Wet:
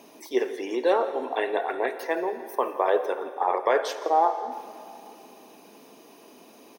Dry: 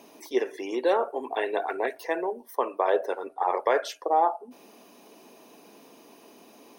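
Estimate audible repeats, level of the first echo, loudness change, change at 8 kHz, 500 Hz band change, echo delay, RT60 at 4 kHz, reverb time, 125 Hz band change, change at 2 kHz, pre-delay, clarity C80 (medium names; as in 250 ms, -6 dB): 1, -18.0 dB, +1.5 dB, +1.5 dB, +1.5 dB, 167 ms, 2.5 s, 2.7 s, no reading, +1.5 dB, 7 ms, 11.0 dB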